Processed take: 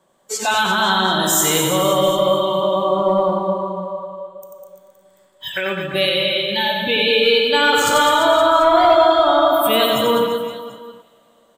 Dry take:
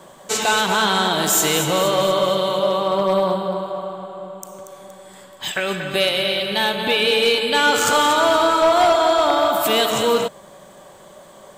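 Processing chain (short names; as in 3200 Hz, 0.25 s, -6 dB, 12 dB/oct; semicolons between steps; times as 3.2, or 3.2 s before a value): spectral noise reduction 18 dB; reverse bouncing-ball echo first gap 90 ms, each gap 1.25×, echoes 5; on a send at -16 dB: reverb, pre-delay 3 ms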